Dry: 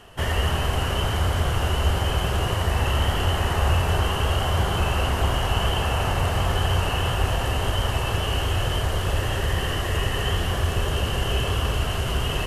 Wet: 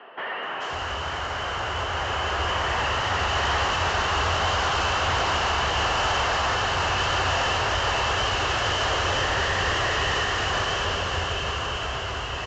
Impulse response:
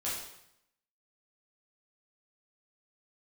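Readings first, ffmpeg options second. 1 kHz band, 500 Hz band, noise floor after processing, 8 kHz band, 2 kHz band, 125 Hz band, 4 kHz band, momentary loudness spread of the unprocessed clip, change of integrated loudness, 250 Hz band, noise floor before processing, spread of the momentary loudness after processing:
+4.0 dB, -0.5 dB, -31 dBFS, +0.5 dB, +5.0 dB, -9.0 dB, +2.0 dB, 2 LU, 0.0 dB, -6.0 dB, -26 dBFS, 6 LU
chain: -filter_complex "[0:a]highpass=40,acrossover=split=110|950[a][b][c];[b]alimiter=level_in=5dB:limit=-24dB:level=0:latency=1,volume=-5dB[d];[a][d][c]amix=inputs=3:normalize=0,asplit=2[e][f];[f]highpass=f=720:p=1,volume=23dB,asoftclip=type=tanh:threshold=-10.5dB[g];[e][g]amix=inputs=2:normalize=0,lowpass=f=2.3k:p=1,volume=-6dB,dynaudnorm=f=440:g=11:m=10dB,volume=12dB,asoftclip=hard,volume=-12dB,acrossover=split=210|2900[h][i][j];[j]adelay=430[k];[h]adelay=530[l];[l][i][k]amix=inputs=3:normalize=0,aresample=16000,aresample=44100,volume=-8.5dB"

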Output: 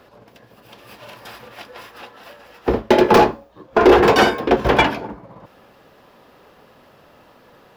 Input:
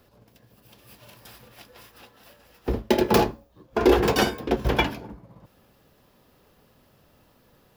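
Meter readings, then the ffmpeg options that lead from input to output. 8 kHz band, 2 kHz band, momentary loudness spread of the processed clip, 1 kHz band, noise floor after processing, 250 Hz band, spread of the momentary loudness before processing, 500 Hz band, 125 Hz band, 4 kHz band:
+1.5 dB, +9.5 dB, 13 LU, +10.5 dB, -51 dBFS, +6.5 dB, 12 LU, +8.5 dB, +2.5 dB, +5.5 dB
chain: -filter_complex "[0:a]asplit=2[a][b];[b]highpass=f=720:p=1,volume=17dB,asoftclip=type=tanh:threshold=-5.5dB[c];[a][c]amix=inputs=2:normalize=0,lowpass=f=1.5k:p=1,volume=-6dB,volume=5dB"

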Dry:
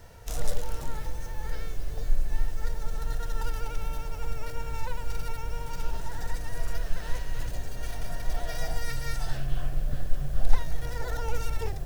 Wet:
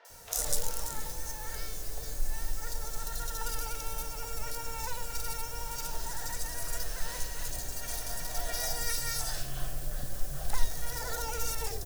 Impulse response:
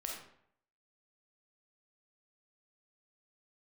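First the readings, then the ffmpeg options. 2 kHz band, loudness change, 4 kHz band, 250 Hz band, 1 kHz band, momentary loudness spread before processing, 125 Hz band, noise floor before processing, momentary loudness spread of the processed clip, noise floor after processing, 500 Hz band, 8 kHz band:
-0.5 dB, +0.5 dB, +5.0 dB, -5.5 dB, -0.5 dB, 5 LU, -8.0 dB, -36 dBFS, 7 LU, -39 dBFS, -3.0 dB, n/a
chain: -filter_complex "[0:a]bass=f=250:g=-8,treble=f=4k:g=12,acrossover=split=450|3100[a][b][c];[c]adelay=50[d];[a]adelay=100[e];[e][b][d]amix=inputs=3:normalize=0"

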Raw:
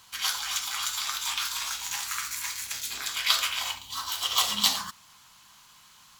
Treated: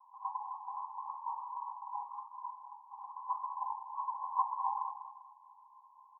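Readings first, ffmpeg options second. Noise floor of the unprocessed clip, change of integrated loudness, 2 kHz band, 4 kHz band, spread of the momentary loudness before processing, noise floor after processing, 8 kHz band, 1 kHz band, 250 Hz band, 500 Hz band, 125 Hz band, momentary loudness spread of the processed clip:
-56 dBFS, -12.5 dB, under -40 dB, under -40 dB, 8 LU, -62 dBFS, under -40 dB, +1.0 dB, under -40 dB, under -25 dB, n/a, 16 LU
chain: -af "asuperpass=centerf=920:order=12:qfactor=3.2,aecho=1:1:198|396|594|792:0.316|0.114|0.041|0.0148,volume=4.5dB"

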